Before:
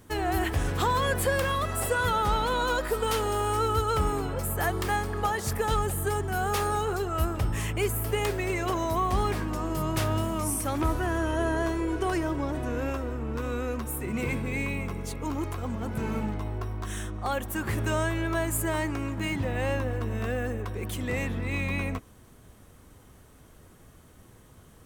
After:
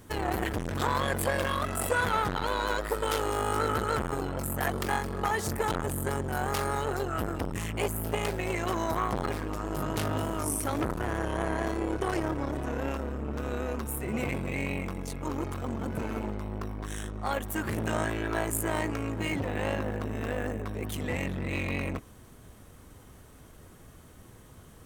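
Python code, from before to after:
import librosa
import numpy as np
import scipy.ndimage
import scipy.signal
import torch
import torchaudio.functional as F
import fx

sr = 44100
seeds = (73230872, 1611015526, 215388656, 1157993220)

y = fx.transformer_sat(x, sr, knee_hz=650.0)
y = y * 10.0 ** (2.0 / 20.0)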